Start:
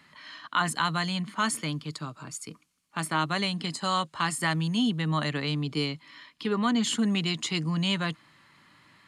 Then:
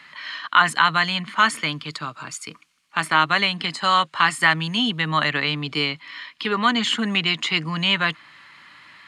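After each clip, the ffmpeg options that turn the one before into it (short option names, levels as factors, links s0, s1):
-filter_complex "[0:a]equalizer=f=2200:w=0.34:g=14.5,acrossover=split=3200[s0][s1];[s1]alimiter=limit=0.0891:level=0:latency=1:release=323[s2];[s0][s2]amix=inputs=2:normalize=0,volume=0.891"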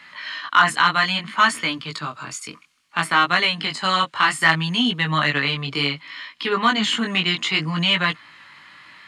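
-af "flanger=delay=16.5:depth=5.7:speed=0.62,acontrast=35,volume=0.891"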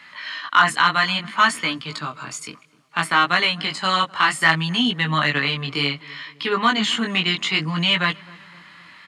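-filter_complex "[0:a]asplit=2[s0][s1];[s1]adelay=257,lowpass=f=1300:p=1,volume=0.0841,asplit=2[s2][s3];[s3]adelay=257,lowpass=f=1300:p=1,volume=0.54,asplit=2[s4][s5];[s5]adelay=257,lowpass=f=1300:p=1,volume=0.54,asplit=2[s6][s7];[s7]adelay=257,lowpass=f=1300:p=1,volume=0.54[s8];[s0][s2][s4][s6][s8]amix=inputs=5:normalize=0"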